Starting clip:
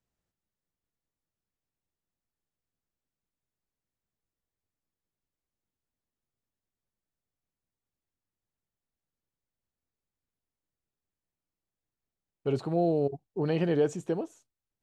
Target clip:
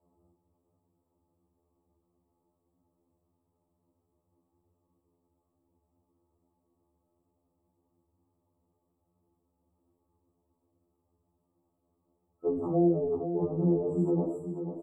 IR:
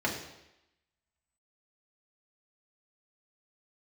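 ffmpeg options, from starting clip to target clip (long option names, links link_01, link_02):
-filter_complex "[1:a]atrim=start_sample=2205,afade=type=out:start_time=0.14:duration=0.01,atrim=end_sample=6615[link_01];[0:a][link_01]afir=irnorm=-1:irlink=0,acrossover=split=170[link_02][link_03];[link_03]acompressor=threshold=-25dB:ratio=6[link_04];[link_02][link_04]amix=inputs=2:normalize=0,lowshelf=frequency=430:gain=10.5,afftfilt=real='re*(1-between(b*sr/4096,1300,7300))':imag='im*(1-between(b*sr/4096,1300,7300))':win_size=4096:overlap=0.75,bass=frequency=250:gain=-9,treble=frequency=4000:gain=-5,alimiter=level_in=4.5dB:limit=-24dB:level=0:latency=1:release=66,volume=-4.5dB,asplit=2[link_05][link_06];[link_06]aecho=0:1:489|978|1467|1956|2445:0.355|0.16|0.0718|0.0323|0.0145[link_07];[link_05][link_07]amix=inputs=2:normalize=0,afftfilt=real='re*2*eq(mod(b,4),0)':imag='im*2*eq(mod(b,4),0)':win_size=2048:overlap=0.75,volume=9dB"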